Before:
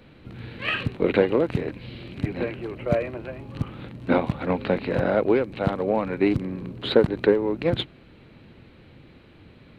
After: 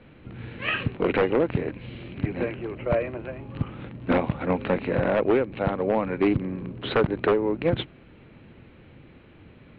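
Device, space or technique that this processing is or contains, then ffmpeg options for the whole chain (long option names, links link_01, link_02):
synthesiser wavefolder: -af "aeval=exprs='0.224*(abs(mod(val(0)/0.224+3,4)-2)-1)':channel_layout=same,lowpass=frequency=3200:width=0.5412,lowpass=frequency=3200:width=1.3066"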